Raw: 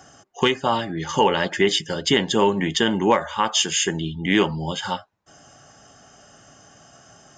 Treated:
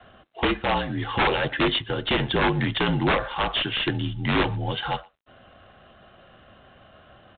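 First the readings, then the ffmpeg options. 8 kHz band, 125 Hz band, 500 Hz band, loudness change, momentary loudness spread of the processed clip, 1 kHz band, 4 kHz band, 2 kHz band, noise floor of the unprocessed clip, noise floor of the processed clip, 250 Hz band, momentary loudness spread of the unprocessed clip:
under -40 dB, +2.0 dB, -5.5 dB, -3.0 dB, 5 LU, -3.5 dB, -3.5 dB, 0.0 dB, -52 dBFS, -54 dBFS, -3.5 dB, 7 LU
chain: -filter_complex "[0:a]adynamicequalizer=threshold=0.0282:dfrequency=350:dqfactor=2.6:tfrequency=350:tqfactor=2.6:attack=5:release=100:ratio=0.375:range=1.5:mode=cutabove:tftype=bell,aeval=exprs='(mod(3.76*val(0)+1,2)-1)/3.76':c=same,afreqshift=-48,aeval=exprs='(tanh(2.82*val(0)+0.1)-tanh(0.1))/2.82':c=same,asplit=2[s0][s1];[s1]adelay=120,highpass=300,lowpass=3400,asoftclip=type=hard:threshold=0.133,volume=0.0562[s2];[s0][s2]amix=inputs=2:normalize=0" -ar 8000 -c:a adpcm_g726 -b:a 24k

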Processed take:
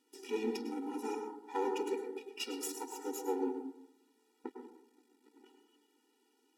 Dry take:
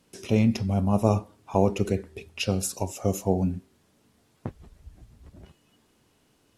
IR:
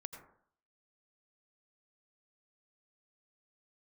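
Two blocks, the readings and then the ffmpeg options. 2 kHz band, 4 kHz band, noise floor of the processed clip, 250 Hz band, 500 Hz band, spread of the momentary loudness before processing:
-9.0 dB, -8.5 dB, -75 dBFS, -13.5 dB, -9.5 dB, 18 LU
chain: -filter_complex "[0:a]aeval=exprs='if(lt(val(0),0),0.251*val(0),val(0))':c=same[s0];[1:a]atrim=start_sample=2205,asetrate=36162,aresample=44100[s1];[s0][s1]afir=irnorm=-1:irlink=0,afftfilt=real='re*eq(mod(floor(b*sr/1024/250),2),1)':imag='im*eq(mod(floor(b*sr/1024/250),2),1)':win_size=1024:overlap=0.75,volume=1.12"

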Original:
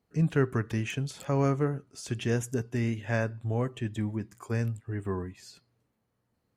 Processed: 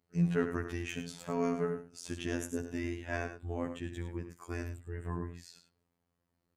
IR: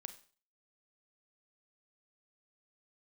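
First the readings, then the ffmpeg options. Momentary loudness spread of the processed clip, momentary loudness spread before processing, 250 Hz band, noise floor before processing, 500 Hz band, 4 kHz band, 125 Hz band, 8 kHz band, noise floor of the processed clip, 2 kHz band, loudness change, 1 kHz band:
10 LU, 9 LU, -4.5 dB, -78 dBFS, -5.0 dB, -4.5 dB, -9.5 dB, -4.0 dB, -83 dBFS, -4.5 dB, -6.0 dB, -4.5 dB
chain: -af "aecho=1:1:69.97|102:0.251|0.316,afftfilt=real='hypot(re,im)*cos(PI*b)':imag='0':win_size=2048:overlap=0.75,volume=0.841"

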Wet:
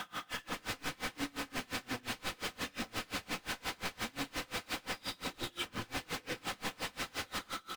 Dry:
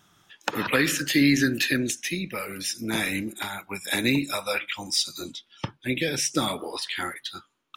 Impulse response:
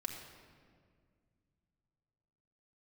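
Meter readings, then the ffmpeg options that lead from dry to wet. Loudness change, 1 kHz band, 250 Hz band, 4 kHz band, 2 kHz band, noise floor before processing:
-14.0 dB, -7.5 dB, -18.5 dB, -11.0 dB, -12.5 dB, -68 dBFS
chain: -filter_complex "[0:a]highpass=f=48:p=1,bandreject=f=50:t=h:w=6,bandreject=f=100:t=h:w=6,bandreject=f=150:t=h:w=6,bandreject=f=200:t=h:w=6,bandreject=f=250:t=h:w=6,bandreject=f=300:t=h:w=6,bandreject=f=350:t=h:w=6,bandreject=f=400:t=h:w=6,aecho=1:1:89|178|267|356|445:0.501|0.216|0.0927|0.0398|0.0171,acrossover=split=190[s0][s1];[s1]acompressor=threshold=0.0158:ratio=6[s2];[s0][s2]amix=inputs=2:normalize=0,asplit=2[s3][s4];[s4]highpass=f=720:p=1,volume=31.6,asoftclip=type=tanh:threshold=0.168[s5];[s3][s5]amix=inputs=2:normalize=0,lowpass=f=2800:p=1,volume=0.501,aresample=11025,aeval=exprs='(mod(15.8*val(0)+1,2)-1)/15.8':c=same,aresample=44100,acrossover=split=3300[s6][s7];[s7]acompressor=threshold=0.00178:ratio=4:attack=1:release=60[s8];[s6][s8]amix=inputs=2:normalize=0,asoftclip=type=hard:threshold=0.0106,acrusher=bits=7:mix=0:aa=0.5[s9];[1:a]atrim=start_sample=2205,atrim=end_sample=6615[s10];[s9][s10]afir=irnorm=-1:irlink=0,aeval=exprs='val(0)*pow(10,-29*(0.5-0.5*cos(2*PI*5.7*n/s))/20)':c=same,volume=2.51"

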